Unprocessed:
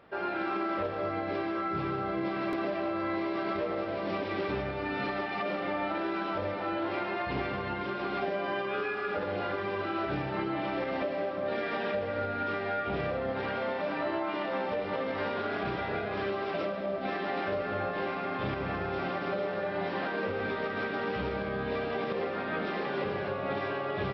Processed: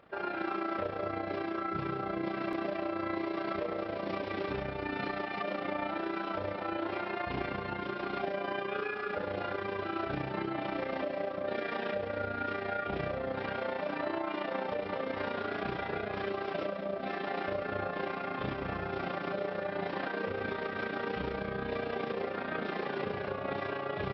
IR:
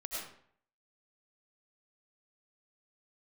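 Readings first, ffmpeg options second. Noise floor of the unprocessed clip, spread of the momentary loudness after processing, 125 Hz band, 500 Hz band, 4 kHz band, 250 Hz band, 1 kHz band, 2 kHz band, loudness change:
-35 dBFS, 1 LU, -3.0 dB, -3.0 dB, -3.0 dB, -3.0 dB, -3.0 dB, -3.0 dB, -3.0 dB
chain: -af "tremolo=f=29:d=0.621"

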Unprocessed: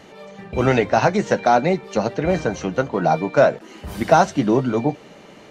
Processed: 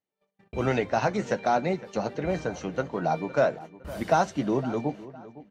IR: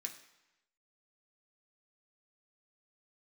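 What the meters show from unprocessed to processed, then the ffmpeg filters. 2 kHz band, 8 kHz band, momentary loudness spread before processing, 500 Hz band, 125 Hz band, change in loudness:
-8.5 dB, -8.5 dB, 10 LU, -8.5 dB, -8.5 dB, -8.5 dB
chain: -filter_complex "[0:a]agate=range=-39dB:threshold=-34dB:ratio=16:detection=peak,asplit=2[a][b];[b]adelay=510,lowpass=f=2.9k:p=1,volume=-17dB,asplit=2[c][d];[d]adelay=510,lowpass=f=2.9k:p=1,volume=0.38,asplit=2[e][f];[f]adelay=510,lowpass=f=2.9k:p=1,volume=0.38[g];[c][e][g]amix=inputs=3:normalize=0[h];[a][h]amix=inputs=2:normalize=0,volume=-8.5dB"

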